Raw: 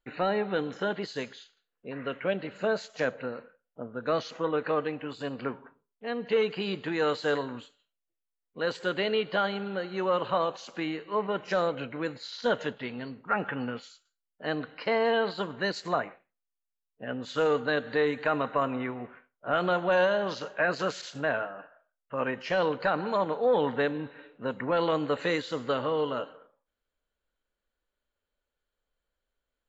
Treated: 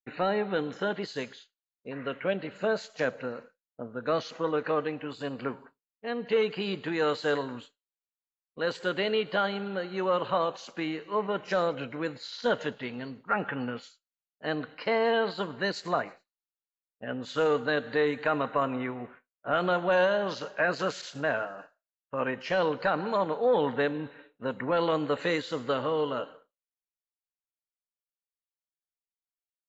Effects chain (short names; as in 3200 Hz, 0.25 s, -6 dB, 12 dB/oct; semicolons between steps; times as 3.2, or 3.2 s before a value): thin delay 0.108 s, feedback 66%, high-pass 4900 Hz, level -20 dB; expander -44 dBFS